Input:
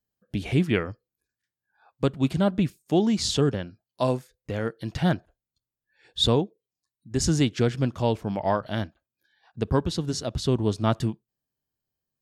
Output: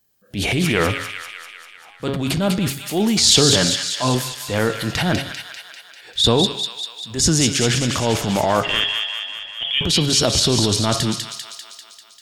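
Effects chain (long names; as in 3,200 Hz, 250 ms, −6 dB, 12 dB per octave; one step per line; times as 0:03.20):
in parallel at +3 dB: compressor whose output falls as the input rises −30 dBFS, ratio −1
on the sum: spectral tilt +1.5 dB per octave
0:00.64–0:02.14: slack as between gear wheels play −47 dBFS
0:03.49–0:04.15: comb filter 6.9 ms
0:08.63–0:09.81: voice inversion scrambler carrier 3,400 Hz
hum removal 137.2 Hz, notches 40
transient designer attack −9 dB, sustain +5 dB
delay with a high-pass on its return 197 ms, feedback 63%, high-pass 1,800 Hz, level −3.5 dB
on a send at −20 dB: convolution reverb RT60 0.35 s, pre-delay 107 ms
on the sum: level +4.5 dB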